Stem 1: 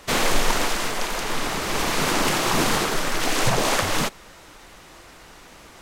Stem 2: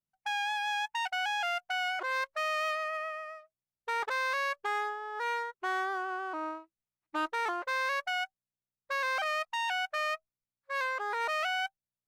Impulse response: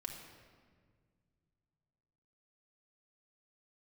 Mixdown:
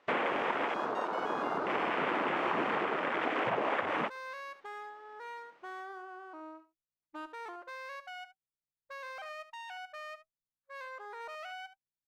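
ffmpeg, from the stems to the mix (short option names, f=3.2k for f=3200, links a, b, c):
-filter_complex "[0:a]lowpass=2.6k,afwtdn=0.0447,highpass=300,volume=-1dB[a];[1:a]tiltshelf=f=760:g=3.5,volume=-11dB,asplit=2[b][c];[c]volume=-13.5dB,aecho=0:1:73:1[d];[a][b][d]amix=inputs=3:normalize=0,acompressor=threshold=-29dB:ratio=4"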